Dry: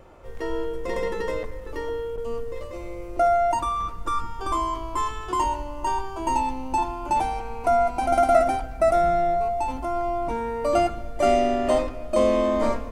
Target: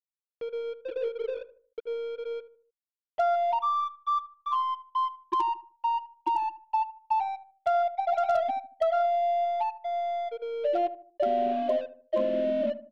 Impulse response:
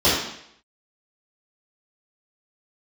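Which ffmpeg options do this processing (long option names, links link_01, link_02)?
-filter_complex "[0:a]highpass=frequency=130:poles=1,equalizer=frequency=770:width=1.7:gain=-2,afftfilt=real='re*gte(hypot(re,im),0.316)':imag='im*gte(hypot(re,im),0.316)':win_size=1024:overlap=0.75,acompressor=mode=upward:threshold=-33dB:ratio=2.5,asplit=2[link_01][link_02];[link_02]alimiter=limit=-16.5dB:level=0:latency=1:release=57,volume=-1.5dB[link_03];[link_01][link_03]amix=inputs=2:normalize=0,acompressor=threshold=-21dB:ratio=3,aeval=exprs='sgn(val(0))*max(abs(val(0))-0.00631,0)':channel_layout=same,lowpass=frequency=3100:width_type=q:width=2.7,aeval=exprs='0.188*(abs(mod(val(0)/0.188+3,4)-2)-1)':channel_layout=same,aeval=exprs='0.188*(cos(1*acos(clip(val(0)/0.188,-1,1)))-cos(1*PI/2))+0.00168*(cos(8*acos(clip(val(0)/0.188,-1,1)))-cos(8*PI/2))':channel_layout=same,asplit=2[link_04][link_05];[link_05]adelay=76,lowpass=frequency=990:poles=1,volume=-12dB,asplit=2[link_06][link_07];[link_07]adelay=76,lowpass=frequency=990:poles=1,volume=0.42,asplit=2[link_08][link_09];[link_09]adelay=76,lowpass=frequency=990:poles=1,volume=0.42,asplit=2[link_10][link_11];[link_11]adelay=76,lowpass=frequency=990:poles=1,volume=0.42[link_12];[link_04][link_06][link_08][link_10][link_12]amix=inputs=5:normalize=0,volume=-3dB"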